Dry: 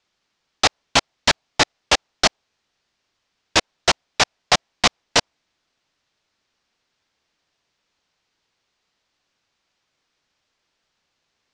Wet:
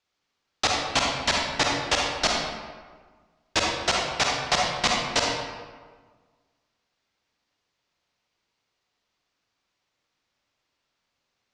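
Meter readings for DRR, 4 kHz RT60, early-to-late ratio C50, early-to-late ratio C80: −1.5 dB, 0.90 s, −0.5 dB, 2.5 dB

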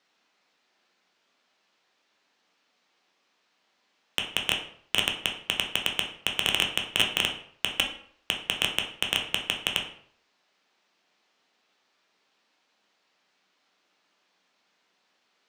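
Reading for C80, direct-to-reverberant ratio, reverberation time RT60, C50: 11.0 dB, 1.5 dB, 0.60 s, 8.0 dB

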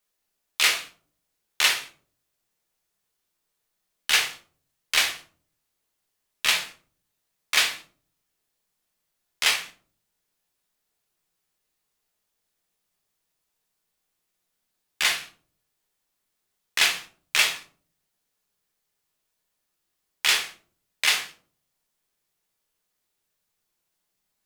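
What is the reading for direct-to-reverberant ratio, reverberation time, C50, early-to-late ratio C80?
2.0 dB, non-exponential decay, 11.0 dB, 17.0 dB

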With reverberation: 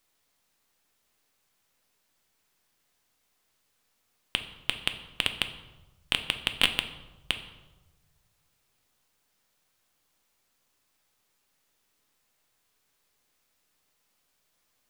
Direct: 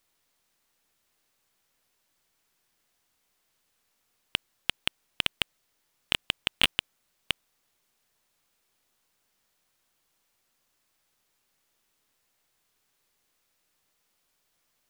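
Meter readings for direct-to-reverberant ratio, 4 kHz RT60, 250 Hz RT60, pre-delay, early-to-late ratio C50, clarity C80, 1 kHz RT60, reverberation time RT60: 7.5 dB, 0.75 s, 1.5 s, 4 ms, 11.0 dB, 13.5 dB, 1.1 s, 1.1 s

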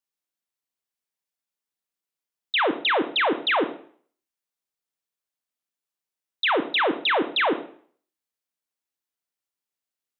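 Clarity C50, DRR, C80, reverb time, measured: 12.0 dB, 8.5 dB, 15.0 dB, 0.50 s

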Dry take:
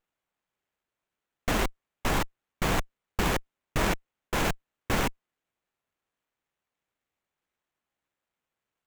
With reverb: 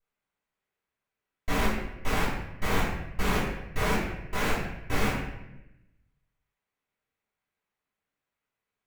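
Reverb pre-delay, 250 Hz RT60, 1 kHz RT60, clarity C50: 3 ms, 1.2 s, 0.80 s, 1.5 dB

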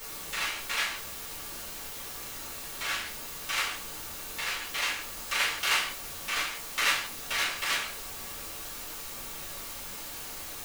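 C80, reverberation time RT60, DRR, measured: 13.0 dB, 0.45 s, −8.0 dB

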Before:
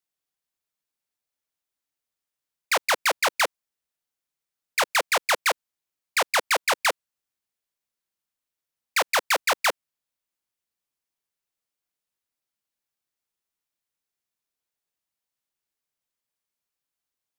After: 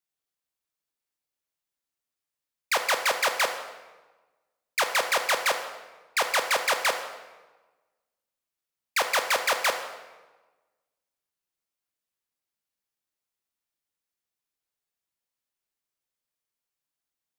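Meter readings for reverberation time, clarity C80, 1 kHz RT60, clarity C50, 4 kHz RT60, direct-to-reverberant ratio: 1.2 s, 9.5 dB, 1.2 s, 8.0 dB, 0.95 s, 6.0 dB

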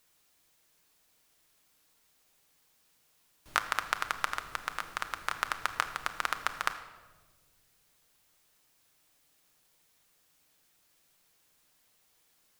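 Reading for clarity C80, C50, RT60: 12.5 dB, 11.0 dB, 1.4 s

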